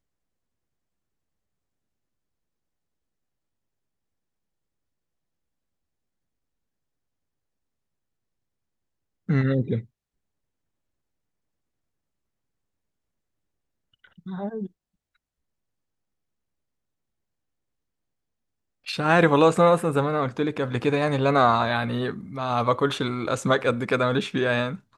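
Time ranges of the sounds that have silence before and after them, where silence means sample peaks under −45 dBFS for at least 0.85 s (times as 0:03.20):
0:09.29–0:09.85
0:14.04–0:14.67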